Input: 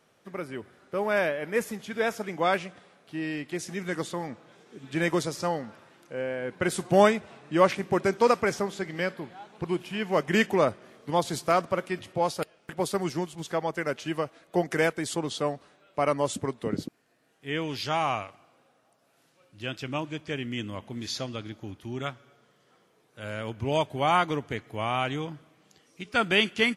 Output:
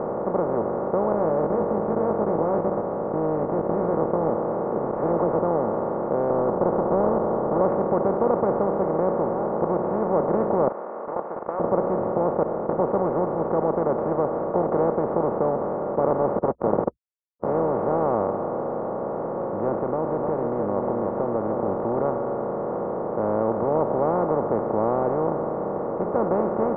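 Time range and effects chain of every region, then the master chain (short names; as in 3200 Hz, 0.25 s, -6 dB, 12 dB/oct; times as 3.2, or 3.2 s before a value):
1.12–4.3 low shelf 300 Hz +12 dB + level quantiser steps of 16 dB + doubler 19 ms -4 dB
4.91–5.39 high shelf 3600 Hz -6.5 dB + dispersion lows, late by 89 ms, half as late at 1600 Hz + careless resampling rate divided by 6×, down none, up hold
6.3–7.61 half-waves squared off + inverse Chebyshev low-pass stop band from 4400 Hz, stop band 60 dB + compressor 1.5:1, threshold -31 dBFS
10.68–11.6 HPF 1300 Hz 24 dB/oct + level quantiser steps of 18 dB
16.1–18.06 level-crossing sampler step -37 dBFS + HPF 69 Hz 24 dB/oct + Doppler distortion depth 0.69 ms
19.74–21.68 compressor 2.5:1, threshold -42 dBFS + echo 0.3 s -9.5 dB
whole clip: per-bin compression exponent 0.2; Bessel low-pass 600 Hz, order 6; low shelf 270 Hz -9 dB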